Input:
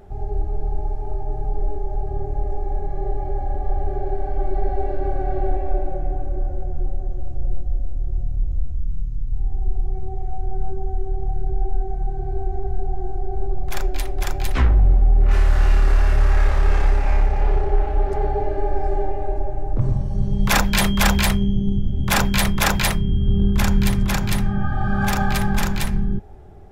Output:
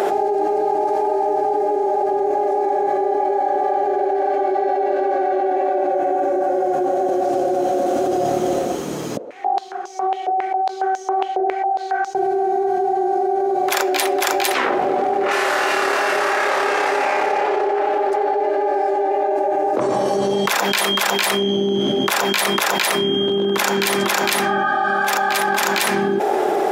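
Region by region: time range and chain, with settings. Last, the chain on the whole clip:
0:09.17–0:12.15: upward compression, threshold −38 dBFS + band-pass on a step sequencer 7.3 Hz 550–6,000 Hz
whole clip: high-pass filter 360 Hz 24 dB per octave; envelope flattener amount 100%; level −2.5 dB

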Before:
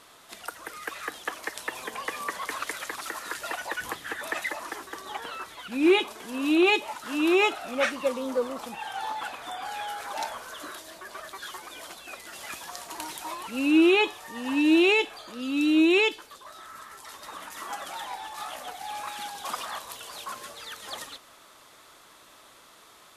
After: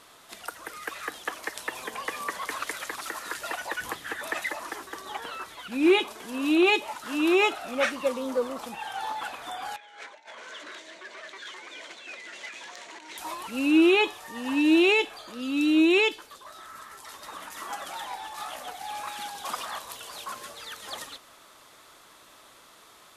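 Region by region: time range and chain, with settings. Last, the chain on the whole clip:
0:09.76–0:13.18: compressor whose output falls as the input rises −39 dBFS, ratio −0.5 + loudspeaker in its box 280–6,600 Hz, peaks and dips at 770 Hz −7 dB, 1,200 Hz −7 dB, 2,100 Hz +7 dB, 5,000 Hz −7 dB + saturating transformer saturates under 3,900 Hz
whole clip: no processing

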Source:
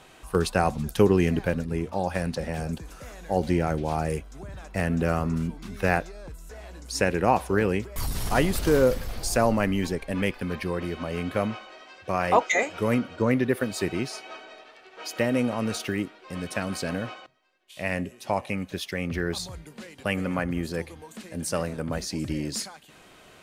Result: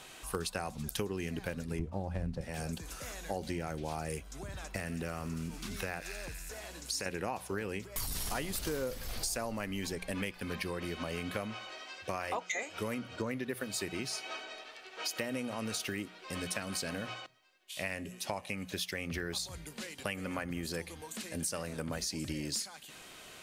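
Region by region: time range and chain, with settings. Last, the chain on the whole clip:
0:01.79–0:02.41: variable-slope delta modulation 64 kbit/s + spectral tilt −4.5 dB per octave
0:04.76–0:07.06: delay with a high-pass on its return 88 ms, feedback 71%, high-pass 3,100 Hz, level −7.5 dB + downward compressor 2 to 1, threshold −31 dBFS
whole clip: high-shelf EQ 2,200 Hz +10 dB; mains-hum notches 60/120/180 Hz; downward compressor 6 to 1, threshold −30 dBFS; level −3.5 dB

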